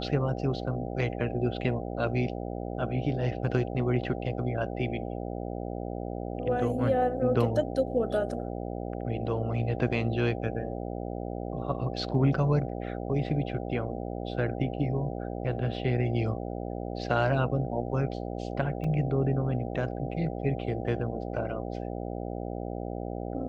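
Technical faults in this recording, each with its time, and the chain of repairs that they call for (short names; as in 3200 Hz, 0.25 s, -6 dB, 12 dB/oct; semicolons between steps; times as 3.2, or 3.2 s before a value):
buzz 60 Hz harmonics 13 -35 dBFS
18.84 gap 3.9 ms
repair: de-hum 60 Hz, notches 13; interpolate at 18.84, 3.9 ms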